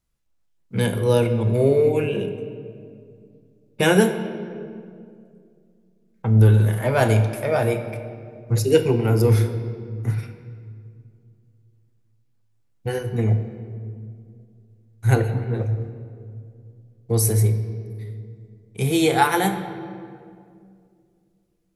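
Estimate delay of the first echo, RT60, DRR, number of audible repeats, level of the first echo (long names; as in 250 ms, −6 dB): no echo audible, 2.3 s, 7.0 dB, no echo audible, no echo audible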